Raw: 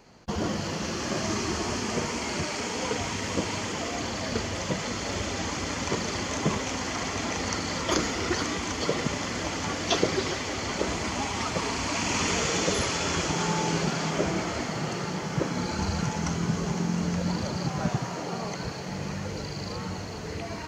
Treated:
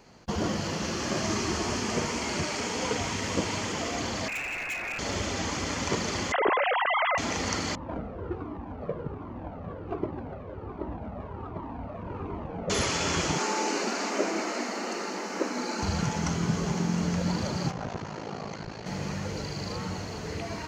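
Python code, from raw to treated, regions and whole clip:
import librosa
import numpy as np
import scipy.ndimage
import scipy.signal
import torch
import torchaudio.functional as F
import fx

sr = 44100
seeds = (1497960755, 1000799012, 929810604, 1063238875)

y = fx.chain(x, sr, fx.freq_invert(carrier_hz=2700),
    fx.clip_hard(threshold_db=-30.0), at=(4.28, 4.99))
y = fx.chain(y, sr, fx.sine_speech(),
    fx.air_absorb(metres=270.0),
    fx.env_flatten(amount_pct=70), at=(6.32, 7.18))
y = fx.chain(y, sr, fx.median_filter(points=25),
    fx.lowpass(hz=1500.0, slope=12),
    fx.comb_cascade(direction='falling', hz=1.3), at=(7.75, 12.7))
y = fx.chain(y, sr, fx.brickwall_highpass(low_hz=200.0),
    fx.notch(hz=3300.0, q=5.9), at=(13.38, 15.83))
y = fx.chain(y, sr, fx.ring_mod(carrier_hz=27.0),
    fx.air_absorb(metres=87.0),
    fx.transformer_sat(knee_hz=560.0), at=(17.71, 18.86))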